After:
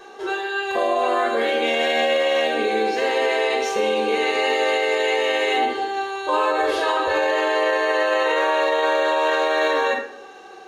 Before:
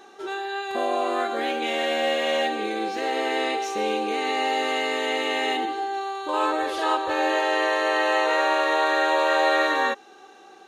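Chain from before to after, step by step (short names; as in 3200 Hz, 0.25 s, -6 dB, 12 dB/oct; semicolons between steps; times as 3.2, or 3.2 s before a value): reverb RT60 0.60 s, pre-delay 3 ms, DRR 3.5 dB; limiter -11.5 dBFS, peak gain reduction 8 dB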